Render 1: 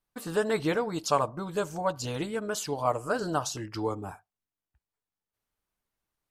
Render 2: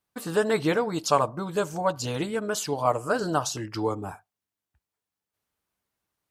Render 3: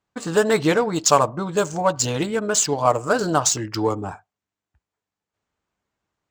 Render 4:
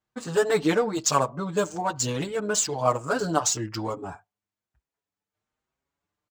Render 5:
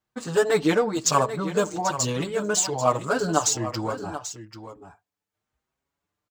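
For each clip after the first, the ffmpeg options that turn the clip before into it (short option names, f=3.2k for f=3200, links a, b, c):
-af "highpass=66,volume=3.5dB"
-af "lowpass=f=7.4k:t=q:w=4.2,adynamicsmooth=sensitivity=6.5:basefreq=3.2k,volume=5.5dB"
-filter_complex "[0:a]asplit=2[a][b];[b]adelay=6.1,afreqshift=1.1[c];[a][c]amix=inputs=2:normalize=1,volume=-2dB"
-af "aecho=1:1:788:0.251,volume=1.5dB"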